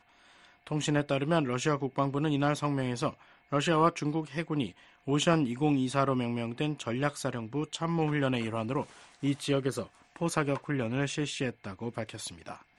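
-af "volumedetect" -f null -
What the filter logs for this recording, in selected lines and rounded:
mean_volume: -30.9 dB
max_volume: -11.0 dB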